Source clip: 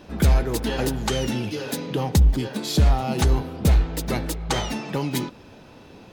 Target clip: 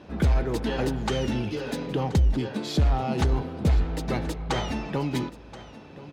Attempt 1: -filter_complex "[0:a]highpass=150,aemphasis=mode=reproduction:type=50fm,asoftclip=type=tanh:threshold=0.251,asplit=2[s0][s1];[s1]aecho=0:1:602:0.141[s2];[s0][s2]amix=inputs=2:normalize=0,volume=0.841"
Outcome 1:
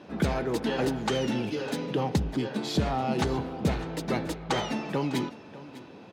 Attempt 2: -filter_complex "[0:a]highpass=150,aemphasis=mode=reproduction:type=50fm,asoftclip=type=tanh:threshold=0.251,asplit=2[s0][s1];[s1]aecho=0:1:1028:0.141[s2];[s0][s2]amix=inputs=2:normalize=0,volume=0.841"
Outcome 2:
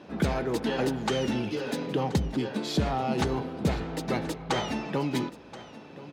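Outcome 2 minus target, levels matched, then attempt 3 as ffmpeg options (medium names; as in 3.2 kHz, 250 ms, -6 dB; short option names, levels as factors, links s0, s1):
125 Hz band -3.5 dB
-filter_complex "[0:a]highpass=44,aemphasis=mode=reproduction:type=50fm,asoftclip=type=tanh:threshold=0.251,asplit=2[s0][s1];[s1]aecho=0:1:1028:0.141[s2];[s0][s2]amix=inputs=2:normalize=0,volume=0.841"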